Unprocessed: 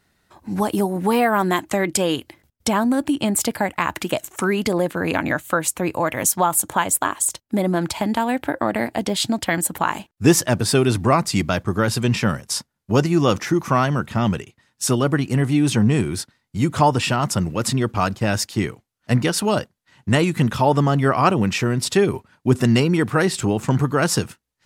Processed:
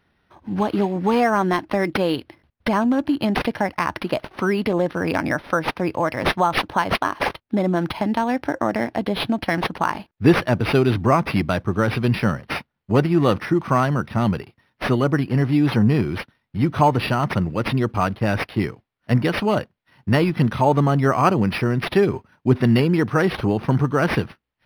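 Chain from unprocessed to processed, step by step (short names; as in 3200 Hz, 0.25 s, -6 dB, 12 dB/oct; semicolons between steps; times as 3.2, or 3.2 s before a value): decimation joined by straight lines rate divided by 6×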